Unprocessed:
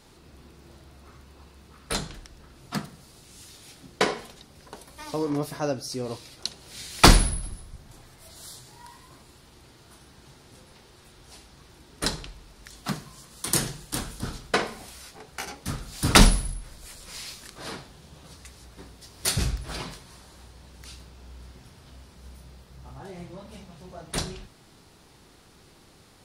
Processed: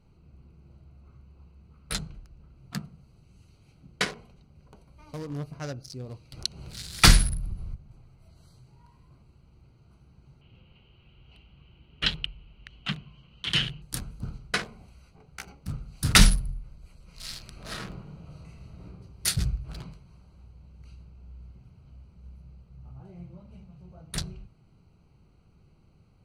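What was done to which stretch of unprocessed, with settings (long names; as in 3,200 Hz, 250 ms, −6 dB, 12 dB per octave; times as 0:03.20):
0:06.32–0:07.75: upward compression, threshold −23 dBFS
0:10.41–0:13.82: low-pass with resonance 3,000 Hz, resonance Q 8.6
0:17.15–0:18.85: thrown reverb, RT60 1.2 s, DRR −8 dB
whole clip: adaptive Wiener filter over 25 samples; flat-topped bell 510 Hz −10.5 dB 2.5 octaves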